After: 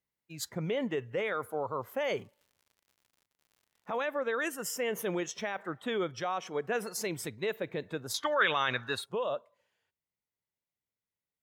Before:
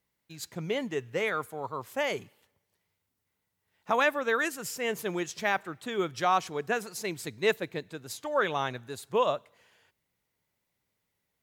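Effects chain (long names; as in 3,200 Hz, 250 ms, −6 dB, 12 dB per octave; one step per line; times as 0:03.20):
speech leveller within 5 dB 0.5 s
dynamic equaliser 530 Hz, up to +6 dB, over −45 dBFS, Q 3.7
noise reduction from a noise print of the clip's start 13 dB
brickwall limiter −24 dBFS, peak gain reduction 11.5 dB
0:01.84–0:03.96: surface crackle 98 per second −53 dBFS
0:08.14–0:09.06: flat-topped bell 2,500 Hz +11.5 dB 2.8 octaves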